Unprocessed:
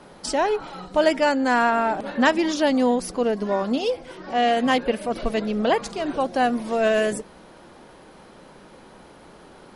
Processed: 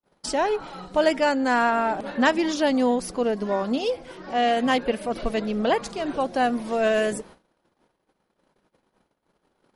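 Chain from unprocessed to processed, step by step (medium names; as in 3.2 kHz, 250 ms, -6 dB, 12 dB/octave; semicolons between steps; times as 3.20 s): gate -43 dBFS, range -47 dB; trim -1.5 dB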